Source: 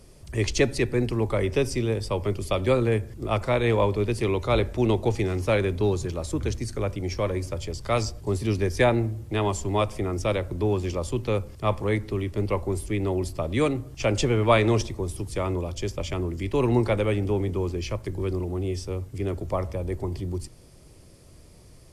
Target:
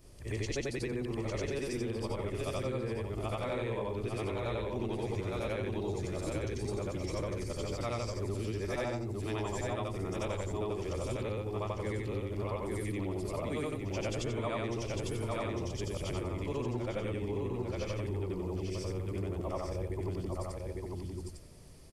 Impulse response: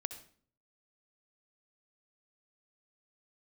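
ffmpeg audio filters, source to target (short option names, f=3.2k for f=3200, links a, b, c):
-af "afftfilt=real='re':imag='-im':win_size=8192:overlap=0.75,aecho=1:1:852:0.562,acompressor=threshold=-32dB:ratio=6"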